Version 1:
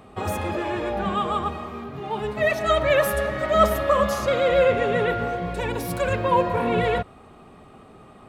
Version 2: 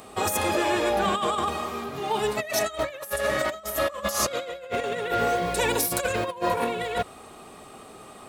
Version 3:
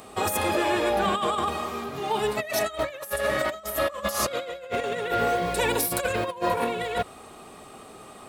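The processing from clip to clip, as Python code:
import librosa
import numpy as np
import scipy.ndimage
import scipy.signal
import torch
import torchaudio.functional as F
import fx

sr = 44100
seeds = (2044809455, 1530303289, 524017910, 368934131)

y1 = fx.bass_treble(x, sr, bass_db=-9, treble_db=14)
y1 = fx.over_compress(y1, sr, threshold_db=-26.0, ratio=-0.5)
y2 = fx.dynamic_eq(y1, sr, hz=6400.0, q=2.0, threshold_db=-45.0, ratio=4.0, max_db=-5)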